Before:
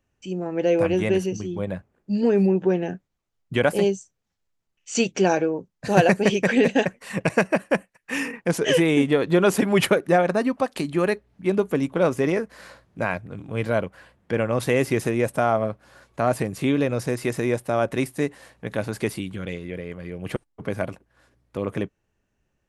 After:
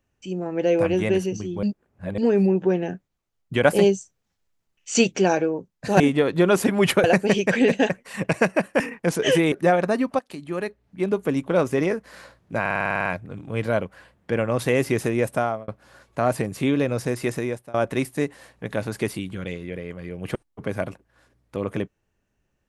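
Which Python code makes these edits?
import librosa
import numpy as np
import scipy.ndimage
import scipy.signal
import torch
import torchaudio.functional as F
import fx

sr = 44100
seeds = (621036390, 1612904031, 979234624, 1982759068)

y = fx.edit(x, sr, fx.reverse_span(start_s=1.63, length_s=0.55),
    fx.clip_gain(start_s=3.65, length_s=1.52, db=3.5),
    fx.cut(start_s=7.76, length_s=0.46),
    fx.move(start_s=8.94, length_s=1.04, to_s=6.0),
    fx.fade_in_from(start_s=10.65, length_s=1.2, floor_db=-13.0),
    fx.stutter(start_s=13.07, slice_s=0.05, count=10),
    fx.fade_out_span(start_s=15.37, length_s=0.32),
    fx.fade_out_to(start_s=17.32, length_s=0.43, floor_db=-24.0), tone=tone)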